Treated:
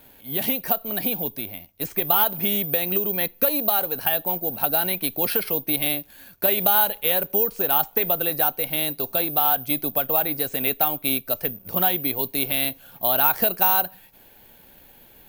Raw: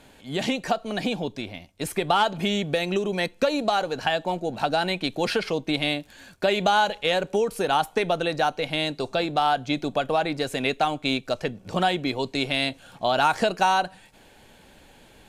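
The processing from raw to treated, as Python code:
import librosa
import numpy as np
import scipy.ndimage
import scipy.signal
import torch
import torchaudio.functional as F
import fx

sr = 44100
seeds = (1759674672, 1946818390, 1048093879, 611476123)

y = (np.kron(scipy.signal.resample_poly(x, 1, 3), np.eye(3)[0]) * 3)[:len(x)]
y = F.gain(torch.from_numpy(y), -3.0).numpy()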